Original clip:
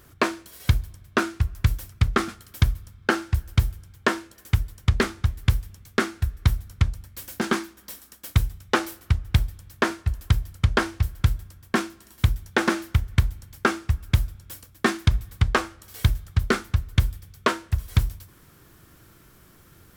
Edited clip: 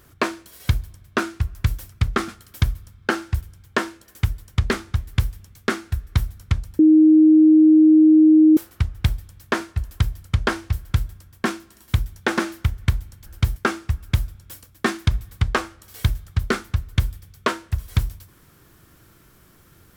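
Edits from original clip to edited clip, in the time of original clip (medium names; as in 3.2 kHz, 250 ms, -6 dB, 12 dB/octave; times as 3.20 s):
3.41–3.71 s: move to 13.56 s
7.09–8.87 s: bleep 312 Hz -8.5 dBFS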